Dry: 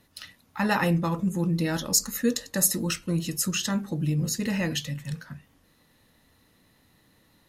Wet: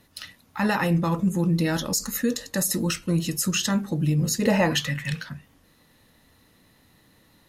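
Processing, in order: limiter -17.5 dBFS, peak gain reduction 9.5 dB; 4.42–5.28 bell 520 Hz -> 3500 Hz +14.5 dB 1.3 oct; gain +3.5 dB

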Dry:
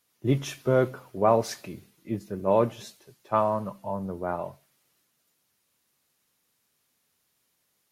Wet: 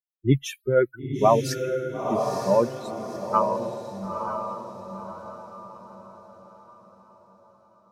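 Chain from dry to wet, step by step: per-bin expansion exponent 3; on a send: diffused feedback echo 0.943 s, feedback 41%, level -5 dB; on the sum: gain +7 dB

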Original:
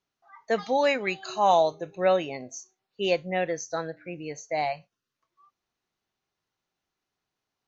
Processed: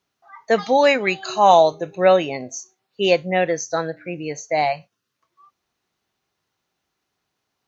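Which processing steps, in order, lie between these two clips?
HPF 42 Hz; gain +8 dB

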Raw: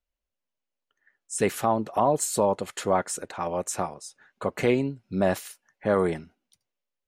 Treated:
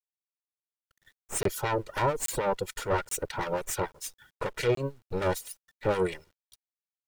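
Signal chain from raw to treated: minimum comb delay 2.1 ms; reverb removal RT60 0.59 s; in parallel at +2 dB: compressor, threshold -31 dBFS, peak gain reduction 13 dB; on the sum: soft clip -16.5 dBFS, distortion -12 dB; harmonic tremolo 6.8 Hz, depth 70%, crossover 1400 Hz; bit-crush 11-bit; crackling interface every 0.83 s, samples 1024, zero, from 0.6

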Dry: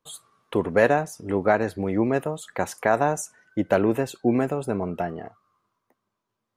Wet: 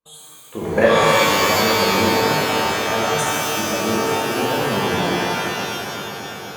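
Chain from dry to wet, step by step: level quantiser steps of 16 dB; on a send: swelling echo 0.123 s, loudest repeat 5, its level -17 dB; on the sum: shimmer reverb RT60 2.3 s, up +12 st, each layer -2 dB, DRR -7.5 dB; gain +2 dB

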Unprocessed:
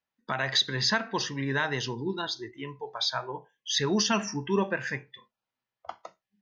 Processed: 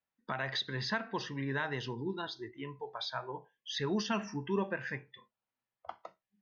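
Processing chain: in parallel at -3 dB: compressor, threshold -35 dBFS, peak gain reduction 14.5 dB; on the sum: air absorption 170 m; gain -7.5 dB

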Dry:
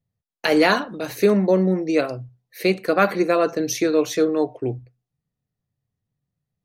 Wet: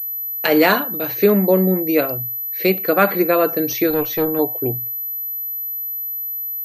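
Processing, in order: 3.9–4.39 tube stage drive 15 dB, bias 0.55; pulse-width modulation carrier 12000 Hz; gain +2.5 dB

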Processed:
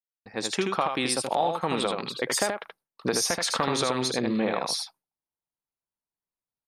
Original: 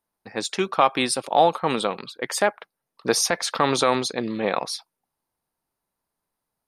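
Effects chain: opening faded in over 0.81 s; gate with hold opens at -47 dBFS; bell 76 Hz +3 dB 2.3 oct; in parallel at -2.5 dB: limiter -15.5 dBFS, peak gain reduction 10.5 dB; on the sum: compressor, threshold -21 dBFS, peak gain reduction 11 dB; on a send: echo 78 ms -4.5 dB; on the sum: gain -2 dB

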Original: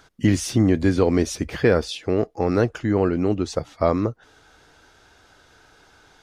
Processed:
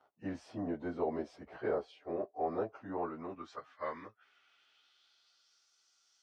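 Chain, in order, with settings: pitch shift by moving bins -1.5 st; band-pass sweep 720 Hz -> 6000 Hz, 2.7–5.72; gain -3.5 dB

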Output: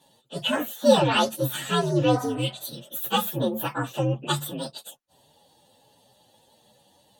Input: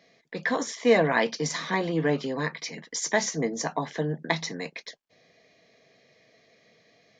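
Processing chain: inharmonic rescaling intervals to 127%; spectral repair 2.18–2.87, 540–2000 Hz both; gain +5.5 dB

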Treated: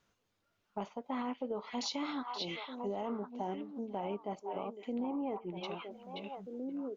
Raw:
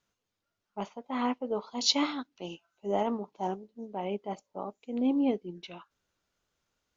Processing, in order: high shelf 4000 Hz -6.5 dB; delay with a stepping band-pass 0.527 s, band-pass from 2800 Hz, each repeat -1.4 oct, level -4.5 dB; limiter -25 dBFS, peak gain reduction 10 dB; 5.04–5.57 graphic EQ 250/1000/2000/4000 Hz -4/+11/+3/-11 dB; compressor 2.5:1, threshold -45 dBFS, peak gain reduction 11 dB; gain +6 dB

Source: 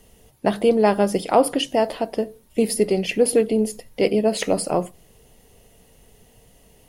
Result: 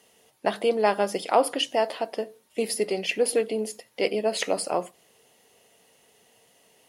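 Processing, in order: weighting filter A; gain -2 dB

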